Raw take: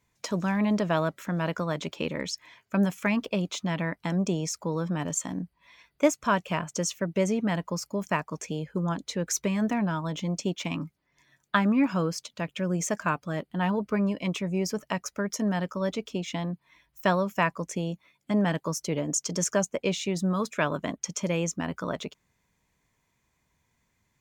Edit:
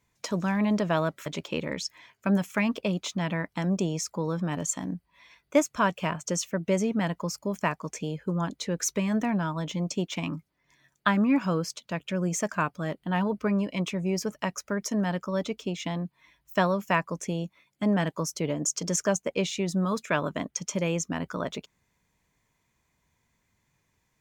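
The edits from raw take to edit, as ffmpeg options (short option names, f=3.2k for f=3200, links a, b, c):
-filter_complex "[0:a]asplit=2[a][b];[a]atrim=end=1.262[c];[b]atrim=start=1.738[d];[c][d]acrossfade=d=0.004:c1=hsin:c2=hsin"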